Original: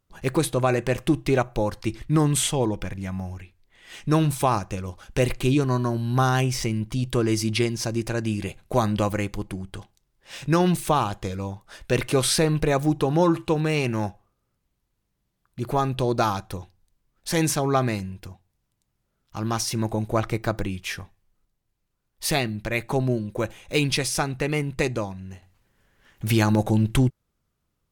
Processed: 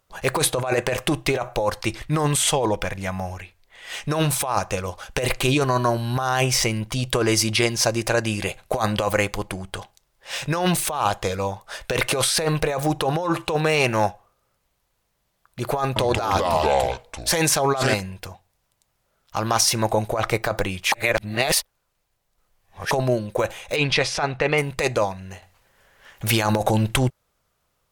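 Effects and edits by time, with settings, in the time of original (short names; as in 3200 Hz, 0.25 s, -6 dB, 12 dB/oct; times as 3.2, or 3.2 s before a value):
15.84–17.94 echoes that change speed 0.12 s, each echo -4 st, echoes 2
20.92–22.91 reverse
23.76–24.58 LPF 3700 Hz
whole clip: resonant low shelf 410 Hz -8.5 dB, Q 1.5; negative-ratio compressor -27 dBFS, ratio -1; gain +7 dB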